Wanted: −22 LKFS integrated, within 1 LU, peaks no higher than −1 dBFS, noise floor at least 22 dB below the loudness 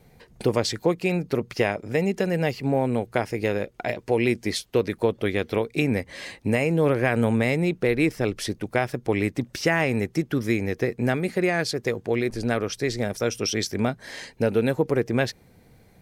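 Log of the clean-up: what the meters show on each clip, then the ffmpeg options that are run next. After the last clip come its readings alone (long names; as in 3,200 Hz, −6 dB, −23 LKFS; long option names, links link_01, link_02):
integrated loudness −25.0 LKFS; sample peak −8.5 dBFS; target loudness −22.0 LKFS
→ -af "volume=3dB"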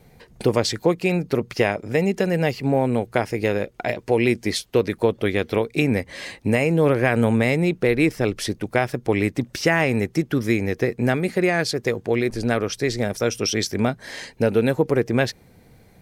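integrated loudness −22.0 LKFS; sample peak −5.5 dBFS; background noise floor −53 dBFS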